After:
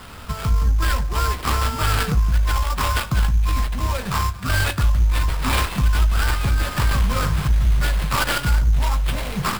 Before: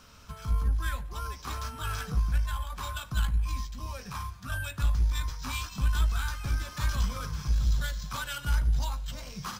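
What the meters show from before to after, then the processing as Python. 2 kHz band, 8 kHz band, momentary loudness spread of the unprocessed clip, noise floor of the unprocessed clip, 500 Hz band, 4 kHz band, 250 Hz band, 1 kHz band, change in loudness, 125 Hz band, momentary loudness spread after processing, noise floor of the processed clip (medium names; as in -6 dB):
+12.5 dB, +11.0 dB, 10 LU, -48 dBFS, +16.0 dB, +11.5 dB, +14.0 dB, +13.5 dB, +11.0 dB, +10.5 dB, 4 LU, -32 dBFS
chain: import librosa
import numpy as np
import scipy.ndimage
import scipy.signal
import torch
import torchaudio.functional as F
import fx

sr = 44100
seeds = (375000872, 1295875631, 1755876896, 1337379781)

p1 = fx.tracing_dist(x, sr, depth_ms=0.48)
p2 = fx.over_compress(p1, sr, threshold_db=-33.0, ratio=-1.0)
p3 = p1 + (p2 * 10.0 ** (0.0 / 20.0))
p4 = fx.sample_hold(p3, sr, seeds[0], rate_hz=6300.0, jitter_pct=20)
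p5 = fx.end_taper(p4, sr, db_per_s=300.0)
y = p5 * 10.0 ** (7.0 / 20.0)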